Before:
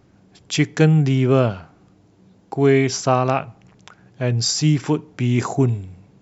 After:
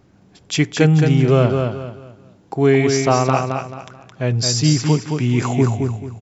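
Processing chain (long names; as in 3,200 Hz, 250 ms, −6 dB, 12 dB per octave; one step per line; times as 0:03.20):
repeating echo 218 ms, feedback 31%, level −5 dB
level +1 dB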